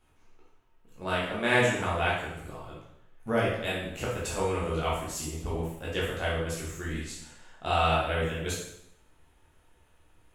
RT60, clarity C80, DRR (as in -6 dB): 0.75 s, 5.0 dB, -7.0 dB